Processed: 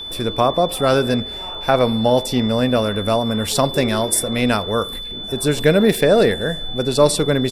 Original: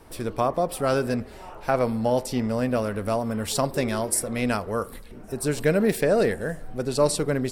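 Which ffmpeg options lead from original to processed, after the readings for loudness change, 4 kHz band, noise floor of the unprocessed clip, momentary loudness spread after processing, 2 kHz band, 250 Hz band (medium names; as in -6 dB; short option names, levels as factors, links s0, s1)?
+7.0 dB, +15.5 dB, -42 dBFS, 8 LU, +7.0 dB, +7.0 dB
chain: -af "aresample=32000,aresample=44100,aeval=exprs='val(0)+0.0178*sin(2*PI*3500*n/s)':c=same,equalizer=f=7300:t=o:w=0.77:g=-2,volume=2.24"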